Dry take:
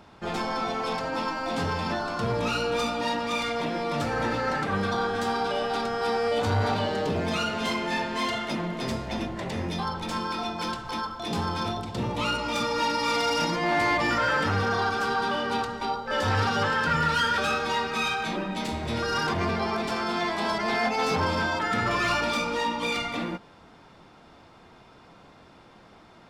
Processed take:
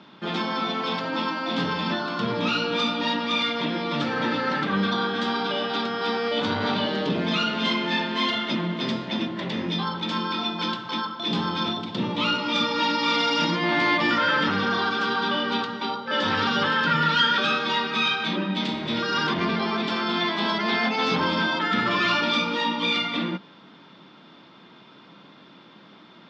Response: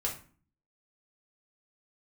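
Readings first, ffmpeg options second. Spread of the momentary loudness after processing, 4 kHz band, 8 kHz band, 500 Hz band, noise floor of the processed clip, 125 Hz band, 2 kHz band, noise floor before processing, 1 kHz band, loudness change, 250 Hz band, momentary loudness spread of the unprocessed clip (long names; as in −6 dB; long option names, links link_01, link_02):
6 LU, +7.0 dB, −6.0 dB, −0.5 dB, −50 dBFS, −1.0 dB, +3.0 dB, −53 dBFS, +1.0 dB, +3.0 dB, +5.0 dB, 7 LU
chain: -af "highpass=frequency=150:width=0.5412,highpass=frequency=150:width=1.3066,equalizer=frequency=190:width_type=q:width=4:gain=4,equalizer=frequency=290:width_type=q:width=4:gain=3,equalizer=frequency=470:width_type=q:width=4:gain=-4,equalizer=frequency=740:width_type=q:width=4:gain=-8,equalizer=frequency=3400:width_type=q:width=4:gain=8,lowpass=frequency=5000:width=0.5412,lowpass=frequency=5000:width=1.3066,volume=3dB"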